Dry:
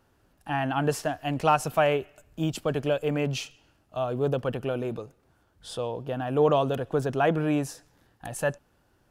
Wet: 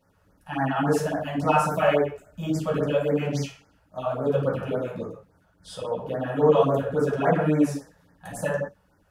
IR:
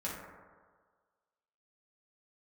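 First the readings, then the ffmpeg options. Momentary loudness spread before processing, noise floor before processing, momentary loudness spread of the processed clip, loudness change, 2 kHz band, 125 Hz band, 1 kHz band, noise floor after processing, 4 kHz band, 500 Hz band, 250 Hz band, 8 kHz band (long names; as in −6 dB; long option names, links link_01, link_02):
16 LU, −67 dBFS, 15 LU, +2.5 dB, +1.5 dB, +2.0 dB, +1.5 dB, −64 dBFS, −2.5 dB, +3.0 dB, +3.5 dB, −1.5 dB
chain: -filter_complex "[1:a]atrim=start_sample=2205,afade=type=out:start_time=0.24:duration=0.01,atrim=end_sample=11025[link_01];[0:a][link_01]afir=irnorm=-1:irlink=0,afftfilt=real='re*(1-between(b*sr/1024,240*pow(3400/240,0.5+0.5*sin(2*PI*3.6*pts/sr))/1.41,240*pow(3400/240,0.5+0.5*sin(2*PI*3.6*pts/sr))*1.41))':imag='im*(1-between(b*sr/1024,240*pow(3400/240,0.5+0.5*sin(2*PI*3.6*pts/sr))/1.41,240*pow(3400/240,0.5+0.5*sin(2*PI*3.6*pts/sr))*1.41))':win_size=1024:overlap=0.75"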